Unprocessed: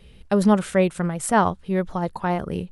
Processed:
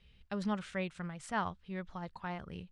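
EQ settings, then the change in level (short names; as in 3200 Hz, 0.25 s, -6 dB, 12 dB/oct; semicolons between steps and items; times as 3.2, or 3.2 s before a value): air absorption 110 m; passive tone stack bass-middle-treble 5-5-5; high shelf 7000 Hz -5 dB; 0.0 dB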